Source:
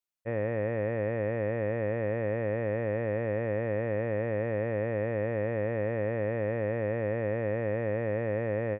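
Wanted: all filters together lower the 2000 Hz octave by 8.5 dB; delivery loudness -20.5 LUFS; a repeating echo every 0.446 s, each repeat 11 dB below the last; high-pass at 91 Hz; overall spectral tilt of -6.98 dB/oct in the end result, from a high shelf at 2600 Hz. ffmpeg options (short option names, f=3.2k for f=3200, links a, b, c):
-af "highpass=91,equalizer=f=2k:t=o:g=-6.5,highshelf=f=2.6k:g=-8,aecho=1:1:446|892|1338:0.282|0.0789|0.0221,volume=11dB"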